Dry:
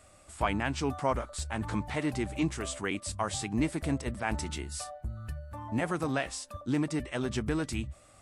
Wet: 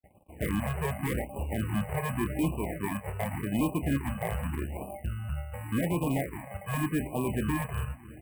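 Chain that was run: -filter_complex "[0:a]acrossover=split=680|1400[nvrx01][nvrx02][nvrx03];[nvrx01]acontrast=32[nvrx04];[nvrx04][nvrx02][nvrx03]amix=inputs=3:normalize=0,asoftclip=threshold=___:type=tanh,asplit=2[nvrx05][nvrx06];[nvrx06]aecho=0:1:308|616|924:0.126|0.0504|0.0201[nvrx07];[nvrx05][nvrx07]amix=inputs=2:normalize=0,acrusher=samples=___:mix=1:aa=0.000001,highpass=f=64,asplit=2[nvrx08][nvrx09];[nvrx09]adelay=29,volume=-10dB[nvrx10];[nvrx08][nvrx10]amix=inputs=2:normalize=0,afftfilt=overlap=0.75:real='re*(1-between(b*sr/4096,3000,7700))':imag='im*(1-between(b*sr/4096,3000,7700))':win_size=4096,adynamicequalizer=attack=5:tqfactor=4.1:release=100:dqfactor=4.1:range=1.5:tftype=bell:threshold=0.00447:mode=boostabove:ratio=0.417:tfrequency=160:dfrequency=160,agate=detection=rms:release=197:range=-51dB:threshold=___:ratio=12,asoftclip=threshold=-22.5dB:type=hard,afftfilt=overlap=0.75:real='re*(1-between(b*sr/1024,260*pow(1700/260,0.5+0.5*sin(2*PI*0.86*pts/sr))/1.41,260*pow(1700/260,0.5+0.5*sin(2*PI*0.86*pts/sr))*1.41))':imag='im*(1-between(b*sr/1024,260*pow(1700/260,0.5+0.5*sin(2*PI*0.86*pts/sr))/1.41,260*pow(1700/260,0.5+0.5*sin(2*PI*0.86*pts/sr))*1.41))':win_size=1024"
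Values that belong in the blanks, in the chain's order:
-20.5dB, 32, -52dB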